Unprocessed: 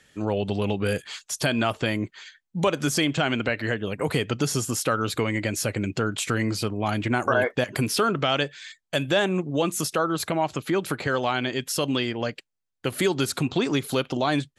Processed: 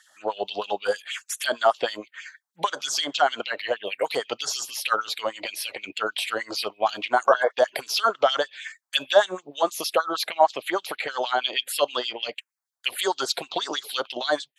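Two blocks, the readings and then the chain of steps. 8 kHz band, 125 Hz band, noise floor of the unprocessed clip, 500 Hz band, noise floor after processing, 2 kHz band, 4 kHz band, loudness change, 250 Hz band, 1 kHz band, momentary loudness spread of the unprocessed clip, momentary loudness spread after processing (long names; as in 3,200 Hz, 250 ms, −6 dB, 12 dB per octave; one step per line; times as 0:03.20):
−2.0 dB, below −25 dB, −79 dBFS, +1.0 dB, −81 dBFS, −0.5 dB, +3.0 dB, 0.0 dB, −13.5 dB, +4.0 dB, 6 LU, 10 LU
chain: phaser swept by the level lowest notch 410 Hz, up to 2,500 Hz, full sweep at −20 dBFS
auto-filter high-pass sine 6.4 Hz 590–3,200 Hz
level +4 dB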